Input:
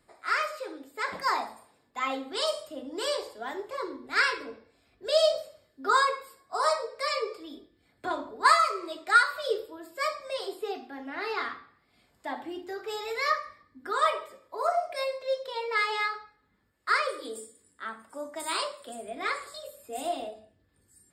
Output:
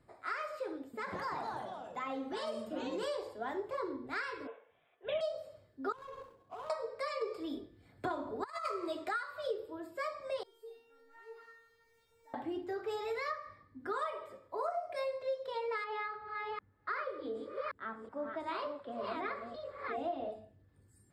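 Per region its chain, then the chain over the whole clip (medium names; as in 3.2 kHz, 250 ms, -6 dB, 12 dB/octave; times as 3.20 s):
0.80–3.03 s: compression 2:1, threshold -35 dBFS + ever faster or slower copies 133 ms, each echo -3 st, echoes 2, each echo -6 dB
4.47–5.21 s: high-pass 510 Hz 24 dB/octave + careless resampling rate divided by 6×, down none, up filtered
5.92–6.70 s: median filter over 25 samples + compression 20:1, threshold -40 dBFS + flutter echo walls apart 11 m, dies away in 0.34 s
7.21–9.09 s: treble shelf 4.5 kHz +5 dB + compressor with a negative ratio -28 dBFS, ratio -0.5
10.43–12.34 s: jump at every zero crossing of -39.5 dBFS + feedback comb 460 Hz, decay 0.71 s, mix 100%
15.84–20.32 s: chunks repeated in reverse 375 ms, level -5 dB + distance through air 220 m
whole clip: peaking EQ 110 Hz +9 dB 0.7 oct; compression 6:1, threshold -32 dBFS; treble shelf 2.3 kHz -12 dB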